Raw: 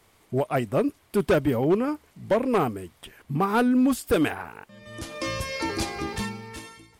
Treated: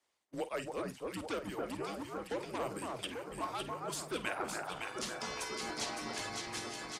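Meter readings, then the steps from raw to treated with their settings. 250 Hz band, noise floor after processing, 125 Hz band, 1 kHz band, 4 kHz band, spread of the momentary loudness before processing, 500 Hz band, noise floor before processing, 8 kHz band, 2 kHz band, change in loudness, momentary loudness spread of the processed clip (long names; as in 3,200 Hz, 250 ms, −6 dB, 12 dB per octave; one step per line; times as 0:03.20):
−19.0 dB, −56 dBFS, −18.5 dB, −10.5 dB, −4.5 dB, 17 LU, −14.5 dB, −61 dBFS, −3.0 dB, −9.0 dB, −14.5 dB, 3 LU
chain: reversed playback
downward compressor 6 to 1, threshold −33 dBFS, peak gain reduction 14.5 dB
reversed playback
low-shelf EQ 280 Hz −3.5 dB
on a send: delay that swaps between a low-pass and a high-pass 280 ms, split 1,800 Hz, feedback 79%, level −3 dB
on the sum: noise gate −48 dBFS, range −30 dB
frequency shifter −100 Hz
low-pass filter 6,900 Hz 12 dB per octave
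harmonic and percussive parts rebalanced harmonic −10 dB
high-pass filter 41 Hz
bass and treble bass −12 dB, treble +7 dB
double-tracking delay 49 ms −13 dB
multiband upward and downward compressor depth 40%
level +1.5 dB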